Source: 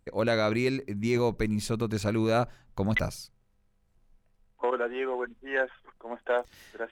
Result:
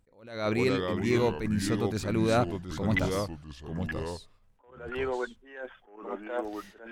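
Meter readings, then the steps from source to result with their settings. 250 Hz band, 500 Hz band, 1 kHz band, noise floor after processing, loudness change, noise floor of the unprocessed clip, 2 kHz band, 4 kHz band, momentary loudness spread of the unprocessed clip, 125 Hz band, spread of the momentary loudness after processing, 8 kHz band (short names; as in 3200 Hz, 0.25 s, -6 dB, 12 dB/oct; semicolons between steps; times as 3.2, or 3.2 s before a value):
+0.5 dB, -1.5 dB, -1.5 dB, -62 dBFS, -1.0 dB, -69 dBFS, -3.0 dB, 0.0 dB, 14 LU, +0.5 dB, 17 LU, +0.5 dB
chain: echoes that change speed 0.362 s, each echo -3 st, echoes 2, each echo -6 dB; attack slew limiter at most 100 dB/s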